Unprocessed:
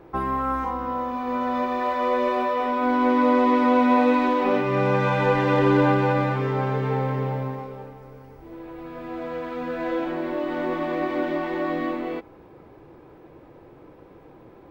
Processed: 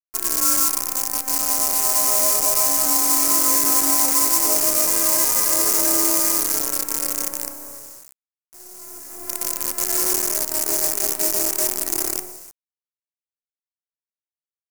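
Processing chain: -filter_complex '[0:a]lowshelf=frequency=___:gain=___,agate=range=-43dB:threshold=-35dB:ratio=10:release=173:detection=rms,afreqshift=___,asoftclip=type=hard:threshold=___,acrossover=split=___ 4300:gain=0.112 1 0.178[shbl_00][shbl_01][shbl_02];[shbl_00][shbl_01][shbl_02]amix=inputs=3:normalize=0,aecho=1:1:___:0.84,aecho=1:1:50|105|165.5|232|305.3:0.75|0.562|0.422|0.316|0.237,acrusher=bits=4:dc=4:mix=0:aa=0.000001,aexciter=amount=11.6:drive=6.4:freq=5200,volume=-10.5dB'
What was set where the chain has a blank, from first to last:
91, 8.5, 33, -15dB, 270, 3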